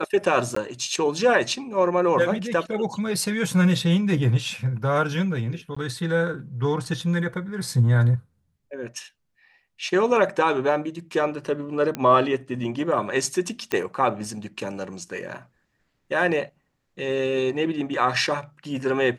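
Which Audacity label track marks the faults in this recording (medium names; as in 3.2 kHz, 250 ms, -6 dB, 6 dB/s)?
0.550000	0.560000	dropout 14 ms
5.750000	5.760000	dropout 15 ms
11.950000	11.950000	pop -13 dBFS
13.720000	13.720000	pop -11 dBFS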